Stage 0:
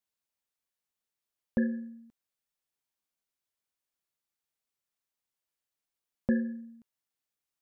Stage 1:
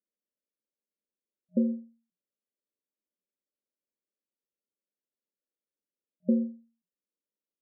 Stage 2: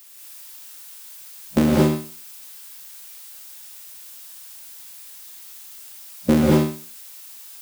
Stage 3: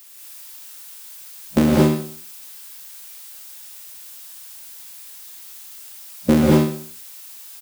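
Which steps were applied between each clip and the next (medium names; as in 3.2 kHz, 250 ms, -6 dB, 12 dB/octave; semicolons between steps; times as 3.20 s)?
FFT band-pass 180–620 Hz; endings held to a fixed fall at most 160 dB/s; trim +2.5 dB
cycle switcher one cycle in 3, muted; added noise blue -56 dBFS; gated-style reverb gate 250 ms rising, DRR -4.5 dB; trim +9 dB
delay 188 ms -21 dB; trim +1.5 dB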